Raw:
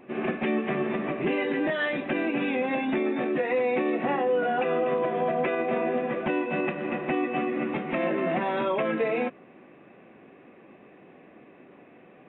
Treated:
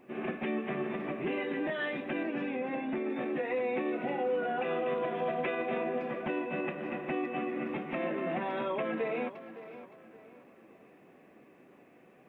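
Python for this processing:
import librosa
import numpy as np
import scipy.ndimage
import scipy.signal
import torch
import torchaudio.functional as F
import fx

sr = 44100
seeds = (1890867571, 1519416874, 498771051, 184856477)

y = fx.spec_repair(x, sr, seeds[0], start_s=3.95, length_s=0.36, low_hz=850.0, high_hz=1900.0, source='after')
y = fx.high_shelf(y, sr, hz=3500.0, db=11.5, at=(4.64, 5.83))
y = fx.quant_dither(y, sr, seeds[1], bits=12, dither='none')
y = fx.air_absorb(y, sr, metres=310.0, at=(2.23, 3.1))
y = fx.echo_tape(y, sr, ms=567, feedback_pct=39, wet_db=-12, lp_hz=3500.0, drive_db=20.0, wow_cents=33)
y = F.gain(torch.from_numpy(y), -7.0).numpy()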